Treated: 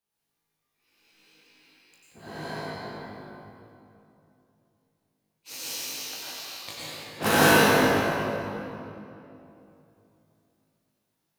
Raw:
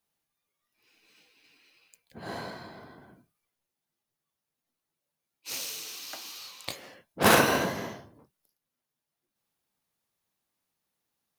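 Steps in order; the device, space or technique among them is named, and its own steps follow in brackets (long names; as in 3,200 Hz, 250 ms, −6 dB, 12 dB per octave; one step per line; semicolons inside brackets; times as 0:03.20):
tunnel (flutter between parallel walls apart 3.3 metres, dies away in 0.24 s; convolution reverb RT60 2.9 s, pre-delay 87 ms, DRR −9 dB)
level −6.5 dB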